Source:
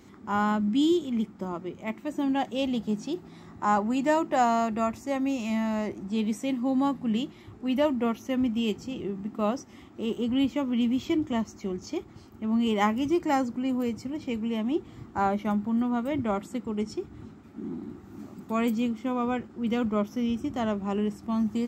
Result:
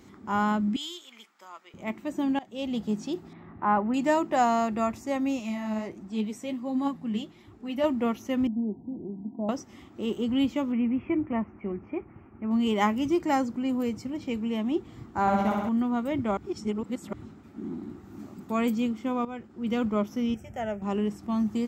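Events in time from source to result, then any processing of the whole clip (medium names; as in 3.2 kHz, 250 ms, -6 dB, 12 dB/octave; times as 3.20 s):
0.76–1.74 s: high-pass 1.4 kHz
2.39–2.82 s: fade in, from -22.5 dB
3.33–3.94 s: low-pass 2.6 kHz 24 dB/octave
5.39–7.84 s: flange 1.4 Hz, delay 2.6 ms, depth 7.1 ms, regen +40%
8.47–9.49 s: rippled Chebyshev low-pass 990 Hz, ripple 9 dB
10.72–12.51 s: elliptic low-pass 2.5 kHz
15.21–15.69 s: flutter echo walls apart 11.1 m, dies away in 1.3 s
16.37–17.13 s: reverse
19.25–19.78 s: fade in linear, from -13 dB
20.34–20.82 s: static phaser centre 1.1 kHz, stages 6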